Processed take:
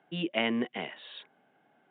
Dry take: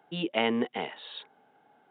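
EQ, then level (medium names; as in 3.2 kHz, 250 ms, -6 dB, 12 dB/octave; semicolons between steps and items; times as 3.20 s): distance through air 70 m; cabinet simulation 120–3500 Hz, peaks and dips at 260 Hz -3 dB, 450 Hz -8 dB, 850 Hz -10 dB, 1.3 kHz -5 dB; +1.5 dB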